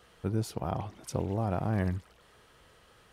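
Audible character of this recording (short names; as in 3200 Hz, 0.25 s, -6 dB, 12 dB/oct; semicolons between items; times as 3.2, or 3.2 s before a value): noise floor -61 dBFS; spectral tilt -7.0 dB/oct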